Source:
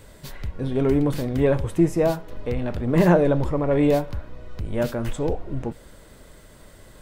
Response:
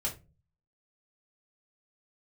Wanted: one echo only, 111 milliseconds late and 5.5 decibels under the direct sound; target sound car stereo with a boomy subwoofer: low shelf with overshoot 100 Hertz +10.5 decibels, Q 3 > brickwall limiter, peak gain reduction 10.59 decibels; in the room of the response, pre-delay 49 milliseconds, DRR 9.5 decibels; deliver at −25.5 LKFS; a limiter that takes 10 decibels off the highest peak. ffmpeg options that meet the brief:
-filter_complex "[0:a]alimiter=limit=-14.5dB:level=0:latency=1,aecho=1:1:111:0.531,asplit=2[link_01][link_02];[1:a]atrim=start_sample=2205,adelay=49[link_03];[link_02][link_03]afir=irnorm=-1:irlink=0,volume=-12.5dB[link_04];[link_01][link_04]amix=inputs=2:normalize=0,lowshelf=frequency=100:width_type=q:width=3:gain=10.5,alimiter=limit=-14dB:level=0:latency=1"

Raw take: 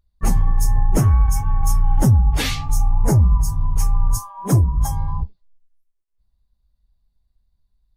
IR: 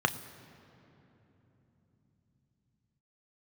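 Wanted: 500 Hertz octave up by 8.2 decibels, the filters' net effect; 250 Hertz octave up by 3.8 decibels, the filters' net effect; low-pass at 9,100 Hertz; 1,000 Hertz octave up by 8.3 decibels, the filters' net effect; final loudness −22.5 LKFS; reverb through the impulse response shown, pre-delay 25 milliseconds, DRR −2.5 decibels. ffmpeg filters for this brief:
-filter_complex "[0:a]lowpass=9100,equalizer=frequency=250:width_type=o:gain=3.5,equalizer=frequency=500:width_type=o:gain=7.5,equalizer=frequency=1000:width_type=o:gain=7.5,asplit=2[link_01][link_02];[1:a]atrim=start_sample=2205,adelay=25[link_03];[link_02][link_03]afir=irnorm=-1:irlink=0,volume=-8dB[link_04];[link_01][link_04]amix=inputs=2:normalize=0,volume=-8.5dB"

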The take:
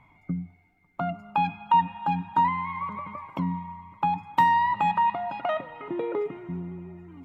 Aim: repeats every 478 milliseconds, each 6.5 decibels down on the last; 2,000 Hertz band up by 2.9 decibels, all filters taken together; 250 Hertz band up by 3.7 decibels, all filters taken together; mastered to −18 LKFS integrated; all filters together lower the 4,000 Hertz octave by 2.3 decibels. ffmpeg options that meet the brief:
ffmpeg -i in.wav -af "equalizer=frequency=250:width_type=o:gain=6,equalizer=frequency=2000:width_type=o:gain=4.5,equalizer=frequency=4000:width_type=o:gain=-6.5,aecho=1:1:478|956|1434|1912|2390|2868:0.473|0.222|0.105|0.0491|0.0231|0.0109,volume=7dB" out.wav

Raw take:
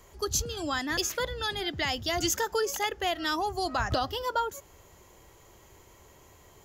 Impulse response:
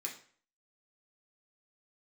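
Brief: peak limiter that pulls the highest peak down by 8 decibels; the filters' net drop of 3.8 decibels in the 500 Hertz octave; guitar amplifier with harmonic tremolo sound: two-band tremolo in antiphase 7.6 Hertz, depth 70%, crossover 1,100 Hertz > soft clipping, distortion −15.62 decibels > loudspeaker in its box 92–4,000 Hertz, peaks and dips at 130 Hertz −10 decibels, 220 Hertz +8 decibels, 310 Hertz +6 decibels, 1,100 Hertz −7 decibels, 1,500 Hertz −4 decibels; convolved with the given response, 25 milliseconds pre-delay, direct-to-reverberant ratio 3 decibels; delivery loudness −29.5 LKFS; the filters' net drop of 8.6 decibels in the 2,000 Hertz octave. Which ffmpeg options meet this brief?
-filter_complex "[0:a]equalizer=frequency=500:width_type=o:gain=-6,equalizer=frequency=2000:width_type=o:gain=-7.5,alimiter=level_in=0.5dB:limit=-24dB:level=0:latency=1,volume=-0.5dB,asplit=2[link_01][link_02];[1:a]atrim=start_sample=2205,adelay=25[link_03];[link_02][link_03]afir=irnorm=-1:irlink=0,volume=-2.5dB[link_04];[link_01][link_04]amix=inputs=2:normalize=0,acrossover=split=1100[link_05][link_06];[link_05]aeval=exprs='val(0)*(1-0.7/2+0.7/2*cos(2*PI*7.6*n/s))':channel_layout=same[link_07];[link_06]aeval=exprs='val(0)*(1-0.7/2-0.7/2*cos(2*PI*7.6*n/s))':channel_layout=same[link_08];[link_07][link_08]amix=inputs=2:normalize=0,asoftclip=threshold=-31.5dB,highpass=92,equalizer=frequency=130:width_type=q:width=4:gain=-10,equalizer=frequency=220:width_type=q:width=4:gain=8,equalizer=frequency=310:width_type=q:width=4:gain=6,equalizer=frequency=1100:width_type=q:width=4:gain=-7,equalizer=frequency=1500:width_type=q:width=4:gain=-4,lowpass=frequency=4000:width=0.5412,lowpass=frequency=4000:width=1.3066,volume=10dB"

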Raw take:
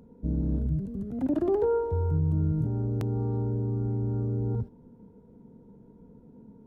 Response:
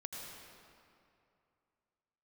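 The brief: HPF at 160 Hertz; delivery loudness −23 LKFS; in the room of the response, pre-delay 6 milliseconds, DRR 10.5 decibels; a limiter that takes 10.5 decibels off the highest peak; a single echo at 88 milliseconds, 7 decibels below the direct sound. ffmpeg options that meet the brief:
-filter_complex "[0:a]highpass=160,alimiter=level_in=3dB:limit=-24dB:level=0:latency=1,volume=-3dB,aecho=1:1:88:0.447,asplit=2[link_01][link_02];[1:a]atrim=start_sample=2205,adelay=6[link_03];[link_02][link_03]afir=irnorm=-1:irlink=0,volume=-9dB[link_04];[link_01][link_04]amix=inputs=2:normalize=0,volume=11dB"

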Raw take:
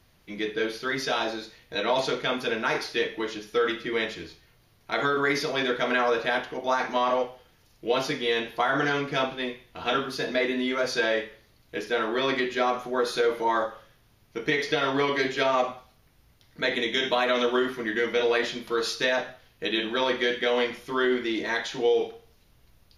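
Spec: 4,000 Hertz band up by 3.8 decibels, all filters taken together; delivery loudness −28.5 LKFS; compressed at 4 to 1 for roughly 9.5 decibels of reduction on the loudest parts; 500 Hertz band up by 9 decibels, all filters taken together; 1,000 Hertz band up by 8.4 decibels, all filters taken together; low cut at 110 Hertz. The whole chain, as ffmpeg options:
ffmpeg -i in.wav -af "highpass=110,equalizer=frequency=500:width_type=o:gain=8.5,equalizer=frequency=1000:width_type=o:gain=8,equalizer=frequency=4000:width_type=o:gain=4,acompressor=threshold=-22dB:ratio=4,volume=-2.5dB" out.wav

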